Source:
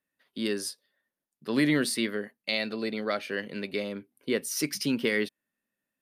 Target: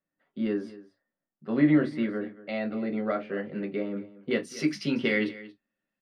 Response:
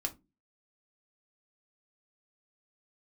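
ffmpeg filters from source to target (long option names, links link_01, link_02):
-filter_complex "[0:a]asetnsamples=nb_out_samples=441:pad=0,asendcmd='4.31 lowpass f 3600',lowpass=1400,aecho=1:1:231:0.133[link_01];[1:a]atrim=start_sample=2205,atrim=end_sample=3528[link_02];[link_01][link_02]afir=irnorm=-1:irlink=0"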